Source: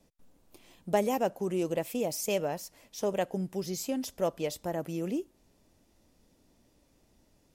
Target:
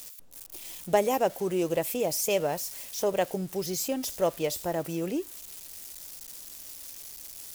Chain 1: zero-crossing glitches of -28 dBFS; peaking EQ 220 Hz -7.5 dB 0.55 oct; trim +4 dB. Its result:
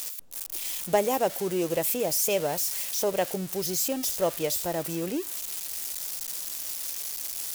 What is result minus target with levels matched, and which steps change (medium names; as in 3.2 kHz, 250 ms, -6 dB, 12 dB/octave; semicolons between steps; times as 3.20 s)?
zero-crossing glitches: distortion +9 dB
change: zero-crossing glitches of -37.5 dBFS